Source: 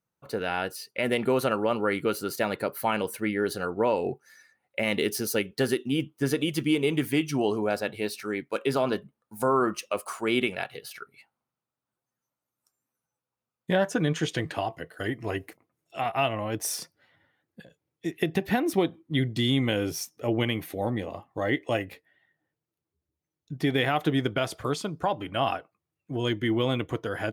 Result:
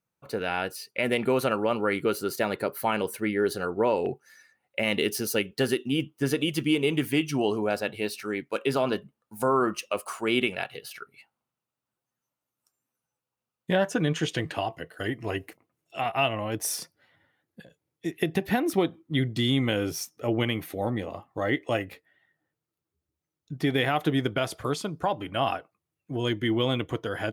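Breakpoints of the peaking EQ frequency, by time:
peaking EQ +4.5 dB 0.21 oct
2.4 kHz
from 1.96 s 390 Hz
from 4.06 s 2.8 kHz
from 16.52 s 11 kHz
from 18.70 s 1.3 kHz
from 23.71 s 11 kHz
from 26.45 s 3.2 kHz

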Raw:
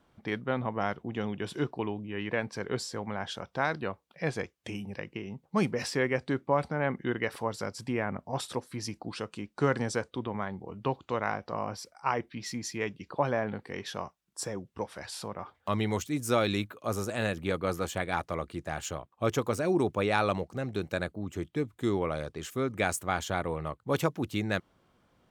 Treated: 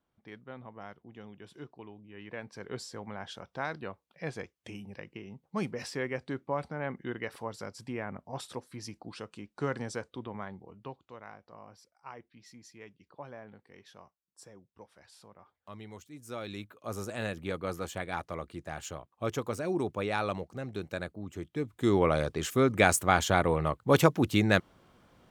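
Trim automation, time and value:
1.92 s -15 dB
2.82 s -6 dB
10.51 s -6 dB
11.13 s -17 dB
16.13 s -17 dB
17.02 s -4.5 dB
21.49 s -4.5 dB
22.05 s +6 dB

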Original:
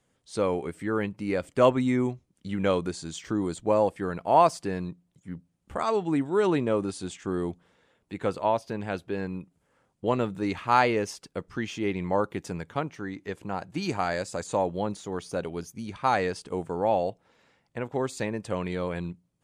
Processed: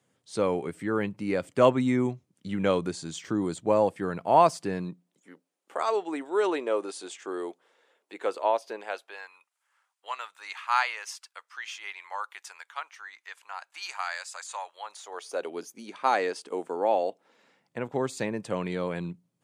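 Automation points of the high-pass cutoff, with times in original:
high-pass 24 dB/octave
4.73 s 100 Hz
5.34 s 370 Hz
8.73 s 370 Hz
9.33 s 1 kHz
14.79 s 1 kHz
15.54 s 280 Hz
17.07 s 280 Hz
17.85 s 120 Hz

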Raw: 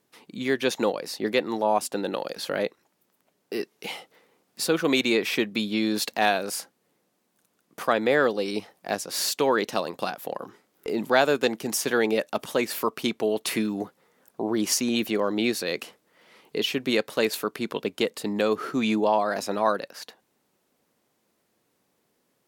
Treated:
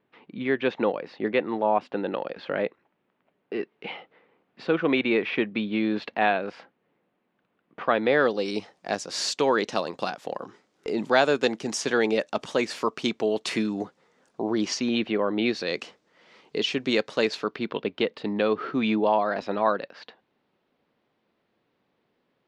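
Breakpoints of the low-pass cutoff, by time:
low-pass 24 dB/octave
7.80 s 2.9 kHz
8.46 s 7.2 kHz
14.43 s 7.2 kHz
15.27 s 2.8 kHz
15.73 s 6.6 kHz
17.19 s 6.6 kHz
17.70 s 3.8 kHz

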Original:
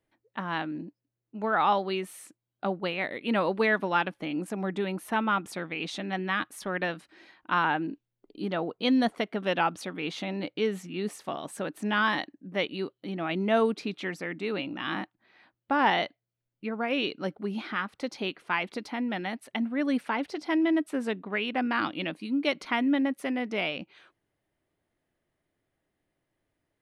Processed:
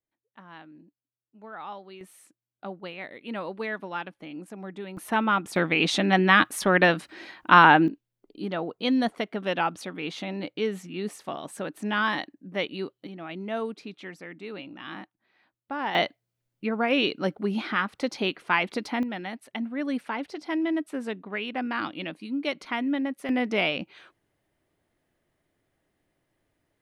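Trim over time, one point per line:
-15 dB
from 2.01 s -7.5 dB
from 4.97 s +3 dB
from 5.56 s +11 dB
from 7.88 s 0 dB
from 13.07 s -7 dB
from 15.95 s +5 dB
from 19.03 s -2 dB
from 23.29 s +5 dB

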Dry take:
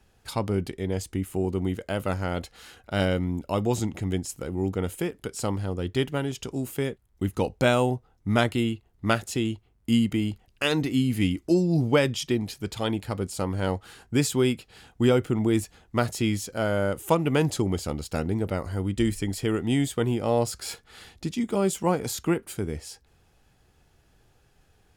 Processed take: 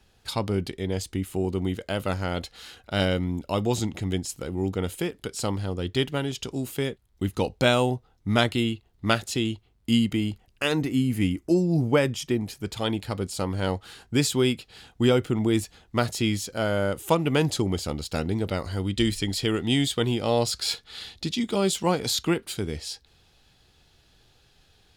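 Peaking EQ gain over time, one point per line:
peaking EQ 3.9 kHz 1 oct
9.98 s +7 dB
10.85 s -4 dB
12.45 s -4 dB
12.97 s +6 dB
17.94 s +6 dB
18.59 s +13.5 dB

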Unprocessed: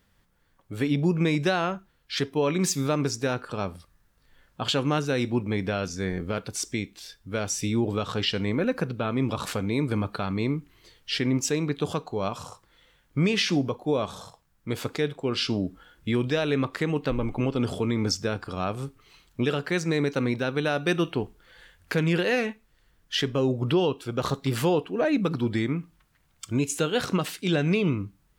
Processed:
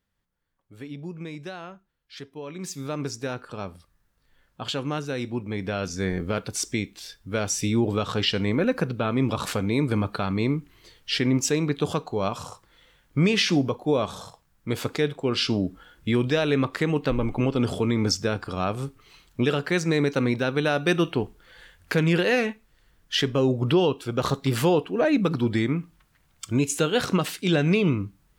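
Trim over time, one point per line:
2.46 s -13 dB
3.03 s -4 dB
5.46 s -4 dB
5.99 s +2.5 dB

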